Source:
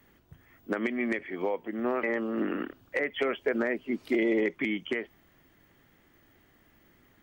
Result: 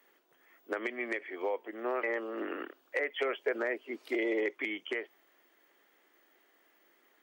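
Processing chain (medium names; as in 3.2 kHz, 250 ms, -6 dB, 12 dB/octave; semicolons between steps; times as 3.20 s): high-pass 360 Hz 24 dB/octave; trim -2.5 dB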